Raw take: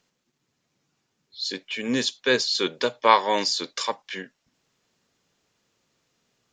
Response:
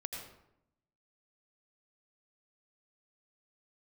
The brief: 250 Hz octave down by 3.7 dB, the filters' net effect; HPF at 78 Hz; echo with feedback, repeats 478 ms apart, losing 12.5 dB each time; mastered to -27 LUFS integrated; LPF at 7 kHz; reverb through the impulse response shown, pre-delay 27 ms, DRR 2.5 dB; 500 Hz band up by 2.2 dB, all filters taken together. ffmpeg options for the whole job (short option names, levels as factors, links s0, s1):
-filter_complex "[0:a]highpass=78,lowpass=7000,equalizer=f=250:t=o:g=-6,equalizer=f=500:t=o:g=4,aecho=1:1:478|956|1434:0.237|0.0569|0.0137,asplit=2[s0][s1];[1:a]atrim=start_sample=2205,adelay=27[s2];[s1][s2]afir=irnorm=-1:irlink=0,volume=0.794[s3];[s0][s3]amix=inputs=2:normalize=0,volume=0.531"